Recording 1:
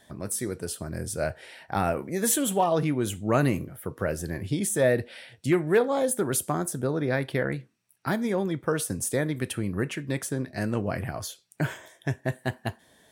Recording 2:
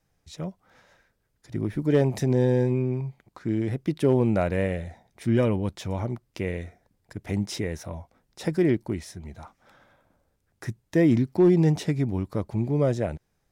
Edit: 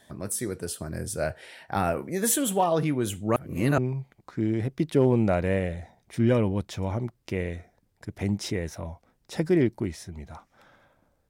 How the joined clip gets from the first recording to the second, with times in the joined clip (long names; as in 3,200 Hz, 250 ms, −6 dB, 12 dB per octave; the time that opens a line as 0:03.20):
recording 1
0:03.36–0:03.78: reverse
0:03.78: continue with recording 2 from 0:02.86